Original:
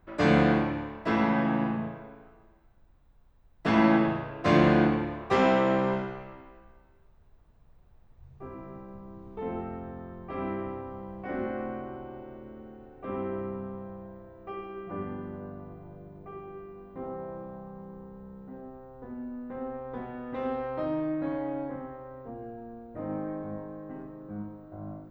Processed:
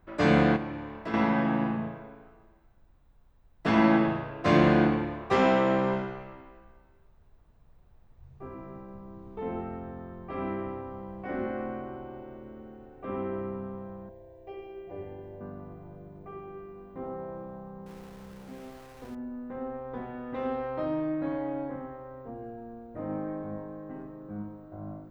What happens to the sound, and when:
0.56–1.14 s: compression 2:1, threshold -36 dBFS
14.09–15.41 s: static phaser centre 530 Hz, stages 4
17.86–19.15 s: small samples zeroed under -47 dBFS

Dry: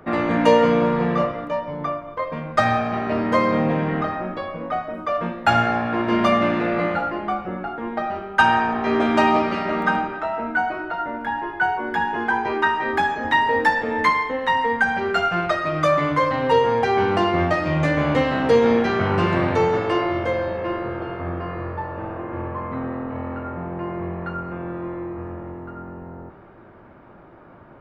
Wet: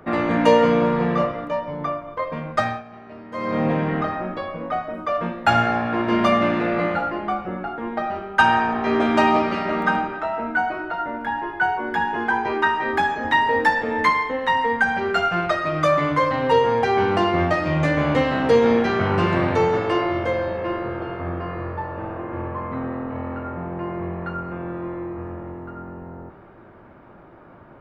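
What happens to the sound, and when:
2.49–3.66 s: dip -17.5 dB, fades 0.34 s

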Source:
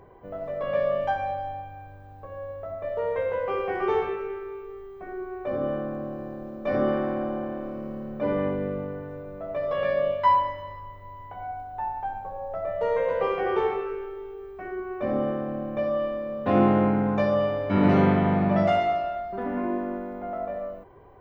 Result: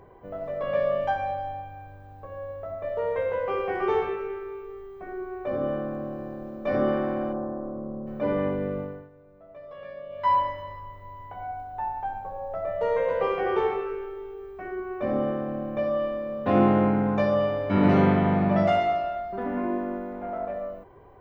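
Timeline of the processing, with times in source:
7.32–8.06 s: low-pass 1.4 kHz -> 1 kHz 24 dB/octave
8.80–10.39 s: dip -15.5 dB, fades 0.30 s
20.12–20.54 s: loudspeaker Doppler distortion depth 0.11 ms

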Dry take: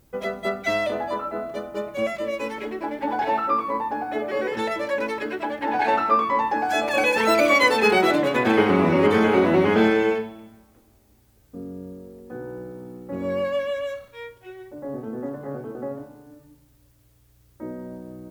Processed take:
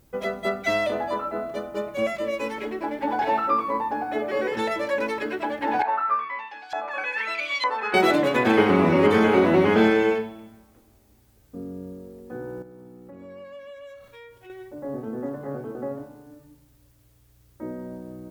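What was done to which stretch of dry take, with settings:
5.82–7.94 s: LFO band-pass saw up 1.1 Hz 900–4100 Hz
12.62–14.50 s: compression 4:1, threshold -43 dBFS

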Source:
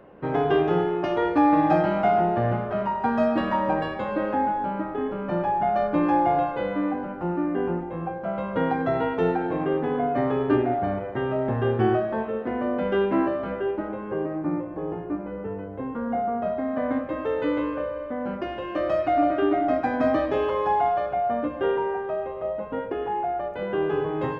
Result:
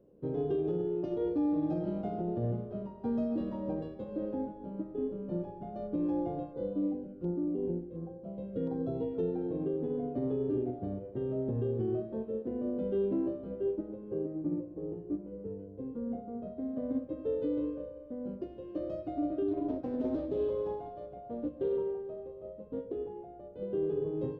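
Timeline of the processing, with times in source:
6.53–9.15 s: LFO notch saw down 1.4 Hz 790–3000 Hz
19.48–22.96 s: loudspeaker Doppler distortion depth 0.37 ms
whole clip: FFT filter 490 Hz 0 dB, 750 Hz -16 dB, 2 kHz -25 dB, 3.6 kHz -11 dB; peak limiter -19.5 dBFS; upward expansion 1.5:1, over -37 dBFS; trim -4 dB

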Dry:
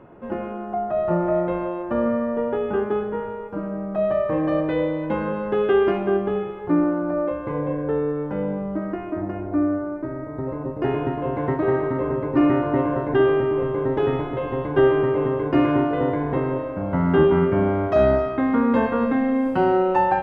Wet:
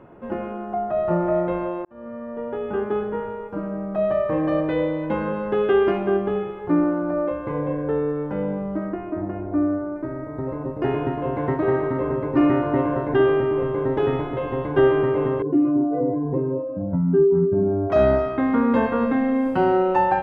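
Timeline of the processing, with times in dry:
1.85–3.03 s: fade in
8.89–9.96 s: treble shelf 2.3 kHz -8.5 dB
15.42–17.90 s: spectral contrast enhancement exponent 2.1

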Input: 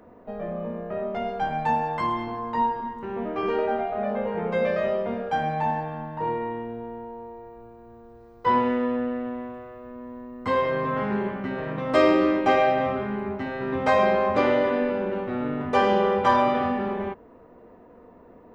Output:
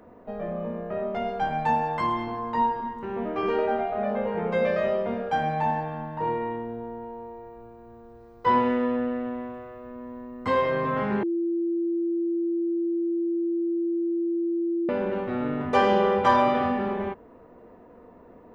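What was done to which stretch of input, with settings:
6.56–7.02 s: peaking EQ 2.6 kHz -5.5 dB
11.23–14.89 s: bleep 339 Hz -23 dBFS

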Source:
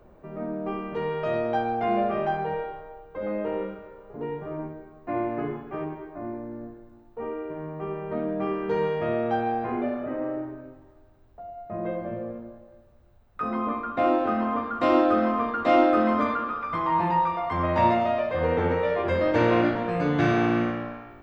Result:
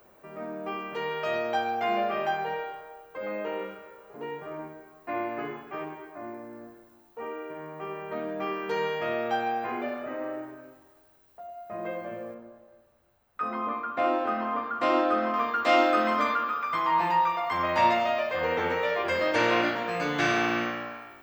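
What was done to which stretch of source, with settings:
12.34–15.34 s: treble shelf 2.8 kHz -10.5 dB
whole clip: tilt EQ +4 dB/octave; band-stop 3.7 kHz, Q 20

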